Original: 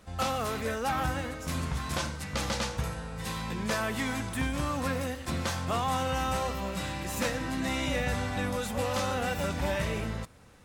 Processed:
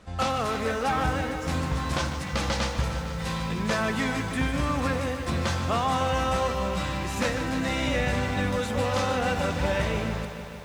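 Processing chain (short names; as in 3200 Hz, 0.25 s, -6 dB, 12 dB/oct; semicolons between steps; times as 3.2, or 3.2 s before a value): air absorption 50 m; lo-fi delay 0.151 s, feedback 80%, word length 9-bit, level -10.5 dB; gain +4 dB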